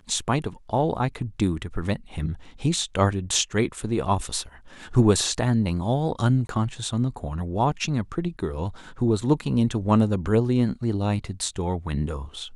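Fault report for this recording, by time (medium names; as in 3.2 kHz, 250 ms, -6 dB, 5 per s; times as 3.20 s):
6.47–6.49 s: dropout 22 ms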